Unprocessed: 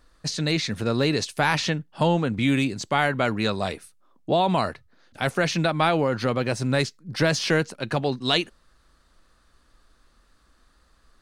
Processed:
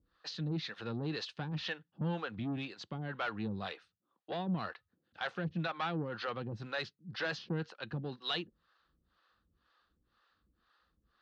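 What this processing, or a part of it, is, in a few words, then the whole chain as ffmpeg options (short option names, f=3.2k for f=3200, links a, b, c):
guitar amplifier with harmonic tremolo: -filter_complex "[0:a]acrossover=split=430[a][b];[a]aeval=exprs='val(0)*(1-1/2+1/2*cos(2*PI*2*n/s))':c=same[c];[b]aeval=exprs='val(0)*(1-1/2-1/2*cos(2*PI*2*n/s))':c=same[d];[c][d]amix=inputs=2:normalize=0,asoftclip=type=tanh:threshold=-22dB,highpass=89,equalizer=f=130:t=q:w=4:g=-6,equalizer=f=260:t=q:w=4:g=-8,equalizer=f=400:t=q:w=4:g=-6,equalizer=f=620:t=q:w=4:g=-10,equalizer=f=950:t=q:w=4:g=-4,equalizer=f=2.2k:t=q:w=4:g=-8,lowpass=f=3.9k:w=0.5412,lowpass=f=3.9k:w=1.3066,volume=-3dB"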